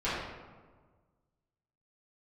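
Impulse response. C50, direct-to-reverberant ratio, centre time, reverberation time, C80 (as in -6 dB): -1.0 dB, -13.0 dB, 86 ms, 1.5 s, 1.5 dB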